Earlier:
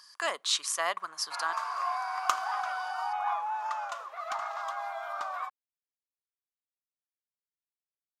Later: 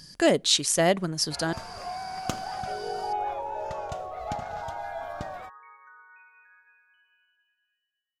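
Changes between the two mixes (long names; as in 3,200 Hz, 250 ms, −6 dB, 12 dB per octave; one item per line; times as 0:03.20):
speech +7.0 dB
second sound: unmuted
master: remove high-pass with resonance 1,100 Hz, resonance Q 6.7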